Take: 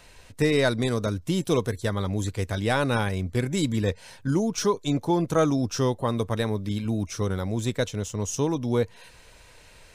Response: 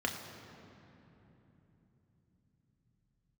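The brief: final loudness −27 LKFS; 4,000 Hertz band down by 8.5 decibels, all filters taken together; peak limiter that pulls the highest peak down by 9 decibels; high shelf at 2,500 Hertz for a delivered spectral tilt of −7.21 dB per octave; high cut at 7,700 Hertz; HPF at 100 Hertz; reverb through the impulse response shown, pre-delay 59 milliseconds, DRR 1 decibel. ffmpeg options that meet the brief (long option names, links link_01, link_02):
-filter_complex "[0:a]highpass=100,lowpass=7700,highshelf=frequency=2500:gain=-7,equalizer=frequency=4000:width_type=o:gain=-4,alimiter=limit=-20dB:level=0:latency=1,asplit=2[link_01][link_02];[1:a]atrim=start_sample=2205,adelay=59[link_03];[link_02][link_03]afir=irnorm=-1:irlink=0,volume=-7dB[link_04];[link_01][link_04]amix=inputs=2:normalize=0"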